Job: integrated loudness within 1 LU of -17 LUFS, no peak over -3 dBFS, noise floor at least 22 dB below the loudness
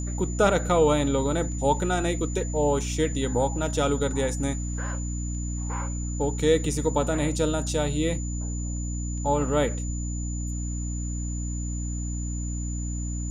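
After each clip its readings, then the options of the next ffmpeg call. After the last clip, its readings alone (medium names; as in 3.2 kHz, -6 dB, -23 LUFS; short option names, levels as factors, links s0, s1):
hum 60 Hz; highest harmonic 300 Hz; hum level -28 dBFS; steady tone 7 kHz; tone level -38 dBFS; loudness -27.0 LUFS; peak level -9.0 dBFS; loudness target -17.0 LUFS
-> -af "bandreject=f=60:t=h:w=4,bandreject=f=120:t=h:w=4,bandreject=f=180:t=h:w=4,bandreject=f=240:t=h:w=4,bandreject=f=300:t=h:w=4"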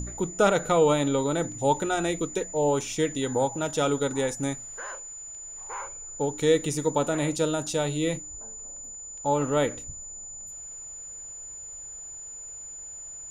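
hum not found; steady tone 7 kHz; tone level -38 dBFS
-> -af "bandreject=f=7000:w=30"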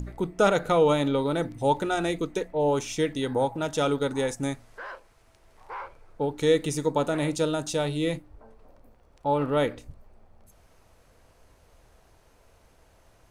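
steady tone not found; loudness -26.5 LUFS; peak level -9.5 dBFS; loudness target -17.0 LUFS
-> -af "volume=2.99,alimiter=limit=0.708:level=0:latency=1"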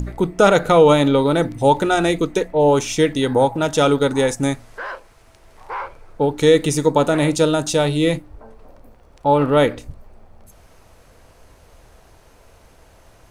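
loudness -17.0 LUFS; peak level -3.0 dBFS; noise floor -51 dBFS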